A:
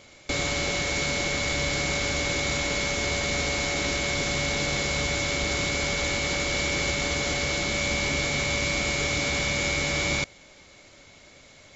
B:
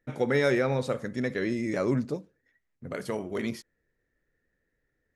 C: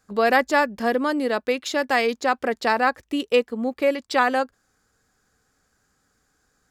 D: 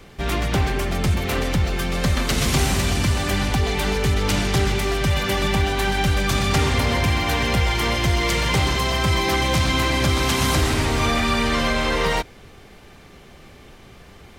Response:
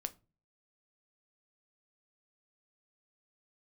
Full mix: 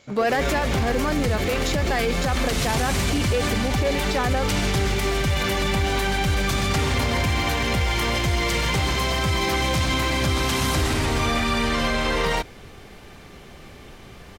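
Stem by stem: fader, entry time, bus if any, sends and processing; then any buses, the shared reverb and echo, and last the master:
-4.0 dB, 0.00 s, no send, wavefolder -24 dBFS
-2.5 dB, 0.00 s, no send, none
-3.5 dB, 0.00 s, no send, waveshaping leveller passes 2
+2.0 dB, 0.20 s, no send, none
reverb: none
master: peak limiter -14 dBFS, peak gain reduction 10.5 dB

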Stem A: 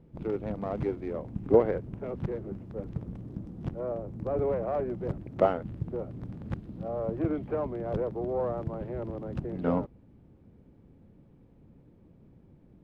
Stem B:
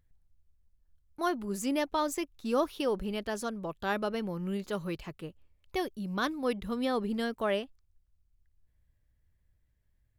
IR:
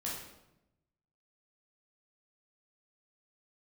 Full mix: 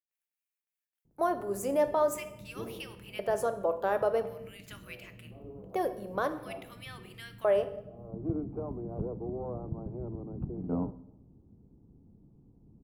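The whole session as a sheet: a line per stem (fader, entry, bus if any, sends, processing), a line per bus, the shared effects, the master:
-2.5 dB, 1.05 s, send -16 dB, boxcar filter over 24 samples; peaking EQ 550 Hz -9.5 dB 0.34 oct; auto duck -23 dB, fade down 0.25 s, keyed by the second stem
+2.5 dB, 0.00 s, send -8.5 dB, gate with hold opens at -58 dBFS; peak limiter -24.5 dBFS, peak gain reduction 6 dB; LFO high-pass square 0.47 Hz 530–2400 Hz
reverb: on, RT60 0.90 s, pre-delay 11 ms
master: peaking EQ 3.9 kHz -14 dB 2 oct

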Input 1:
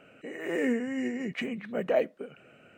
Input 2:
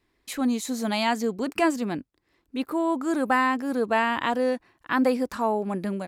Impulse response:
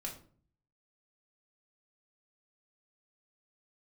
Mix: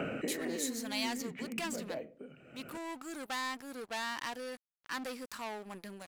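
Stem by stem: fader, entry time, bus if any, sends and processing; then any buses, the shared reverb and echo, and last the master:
-6.0 dB, 0.00 s, send -17 dB, bass shelf 320 Hz +8.5 dB; three bands compressed up and down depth 100%; auto duck -12 dB, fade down 0.70 s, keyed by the second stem
-6.0 dB, 0.00 s, no send, saturation -24 dBFS, distortion -10 dB; tilt shelf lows -7 dB, about 1.4 kHz; crossover distortion -42.5 dBFS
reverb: on, RT60 0.45 s, pre-delay 3 ms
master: none

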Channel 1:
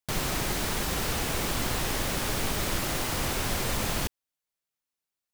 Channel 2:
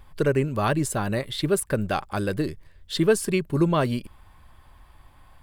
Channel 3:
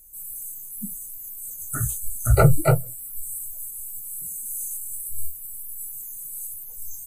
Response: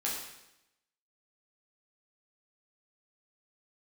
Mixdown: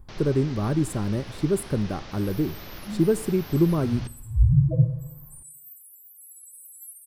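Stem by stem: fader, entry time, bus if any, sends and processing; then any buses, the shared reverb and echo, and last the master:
-12.5 dB, 0.00 s, send -16.5 dB, steep low-pass 5.9 kHz 48 dB/octave
+1.0 dB, 0.00 s, send -22 dB, FFT filter 340 Hz 0 dB, 610 Hz -10 dB, 1.2 kHz -11 dB, 3.1 kHz -23 dB, 7.6 kHz -8 dB
-1.0 dB, 2.10 s, send -4 dB, phase randomisation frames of 200 ms; high-pass 46 Hz; loudest bins only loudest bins 2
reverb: on, RT60 0.85 s, pre-delay 9 ms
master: none

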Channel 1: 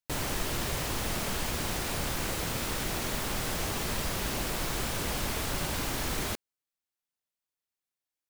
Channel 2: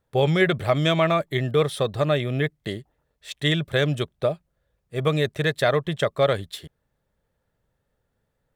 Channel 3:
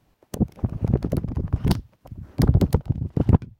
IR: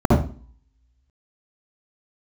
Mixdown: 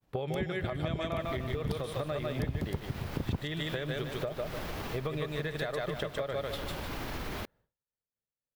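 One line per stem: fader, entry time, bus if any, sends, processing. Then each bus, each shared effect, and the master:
-1.0 dB, 1.10 s, bus A, no send, no echo send, treble shelf 12 kHz -6.5 dB; peak limiter -24.5 dBFS, peak gain reduction 5 dB
+2.0 dB, 0.00 s, bus A, no send, echo send -10.5 dB, bass shelf 110 Hz -6.5 dB
+1.0 dB, 0.00 s, no bus, no send, no echo send, auto duck -6 dB, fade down 0.25 s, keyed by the second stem
bus A: 0.0 dB, peaking EQ 8 kHz -13 dB 1.3 oct; compression 5:1, threshold -26 dBFS, peak gain reduction 12 dB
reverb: none
echo: feedback delay 150 ms, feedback 33%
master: expander -56 dBFS; compression 3:1, threshold -33 dBFS, peak gain reduction 13.5 dB

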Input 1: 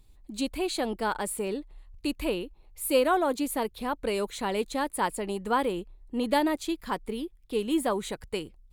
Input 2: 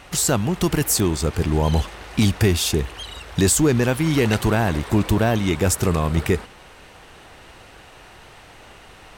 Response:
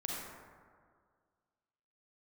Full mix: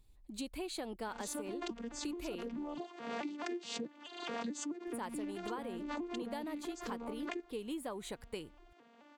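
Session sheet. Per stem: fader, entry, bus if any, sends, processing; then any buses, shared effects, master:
-7.5 dB, 0.00 s, muted 2.76–4.87 s, no send, none
-3.0 dB, 1.05 s, no send, vocoder on a broken chord major triad, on A#3, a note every 215 ms; harmonic-percussive split harmonic -7 dB; swell ahead of each attack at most 81 dB/s; auto duck -7 dB, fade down 1.05 s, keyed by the first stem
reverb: none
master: compression 12:1, threshold -37 dBFS, peak gain reduction 15.5 dB

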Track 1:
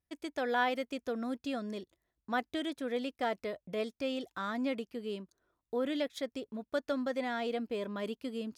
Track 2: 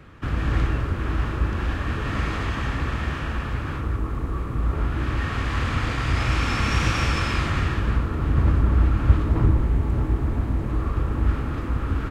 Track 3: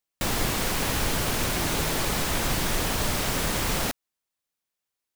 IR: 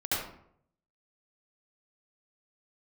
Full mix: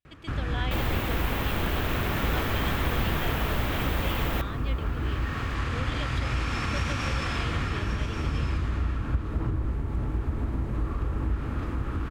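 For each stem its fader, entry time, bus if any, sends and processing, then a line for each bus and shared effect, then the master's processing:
-9.0 dB, 0.00 s, no send, no echo send, peaking EQ 3 kHz +13.5 dB 1.1 oct
-3.5 dB, 0.05 s, no send, echo send -8 dB, compression, threshold -21 dBFS, peak gain reduction 11.5 dB
-3.0 dB, 0.50 s, no send, echo send -23 dB, high-order bell 7.2 kHz -14 dB; vibrato 0.97 Hz 29 cents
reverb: none
echo: delay 1134 ms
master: none

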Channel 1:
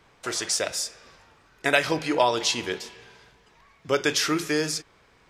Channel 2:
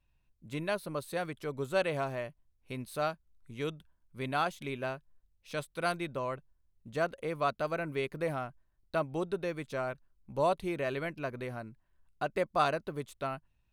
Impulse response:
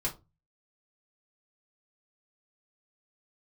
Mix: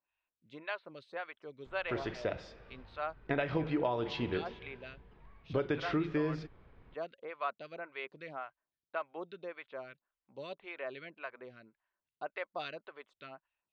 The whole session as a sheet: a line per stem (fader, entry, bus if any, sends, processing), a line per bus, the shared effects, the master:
-7.0 dB, 1.65 s, no send, tilt EQ -3.5 dB/octave
+0.5 dB, 0.00 s, no send, high-pass 1.1 kHz 6 dB/octave; lamp-driven phase shifter 1.8 Hz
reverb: none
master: low-pass 3.7 kHz 24 dB/octave; compression 4:1, threshold -29 dBFS, peak gain reduction 7.5 dB

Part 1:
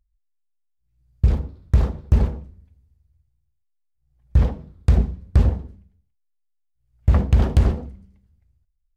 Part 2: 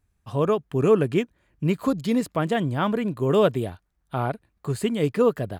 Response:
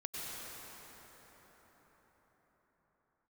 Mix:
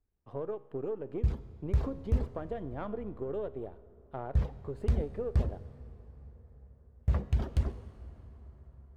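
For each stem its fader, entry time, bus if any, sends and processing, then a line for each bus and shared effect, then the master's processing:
-4.0 dB, 0.00 s, send -14.5 dB, reverb removal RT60 1.8 s; flange 0.73 Hz, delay 0.6 ms, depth 3 ms, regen -63%
-7.5 dB, 0.00 s, send -23.5 dB, partial rectifier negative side -7 dB; FFT filter 180 Hz 0 dB, 440 Hz +9 dB, 11 kHz -20 dB; compression 6:1, threshold -21 dBFS, peak gain reduction 13.5 dB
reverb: on, RT60 5.6 s, pre-delay 88 ms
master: feedback comb 68 Hz, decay 1.1 s, harmonics all, mix 50%

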